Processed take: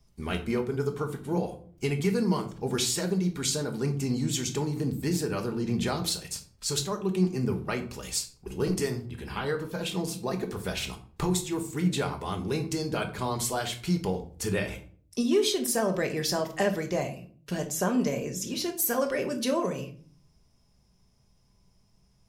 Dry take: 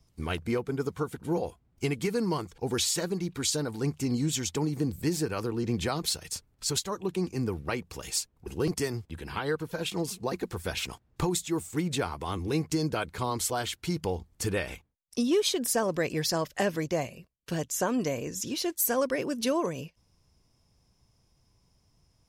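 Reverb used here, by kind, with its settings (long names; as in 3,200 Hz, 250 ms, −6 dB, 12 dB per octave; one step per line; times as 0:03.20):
rectangular room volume 420 cubic metres, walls furnished, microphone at 1.3 metres
level −1 dB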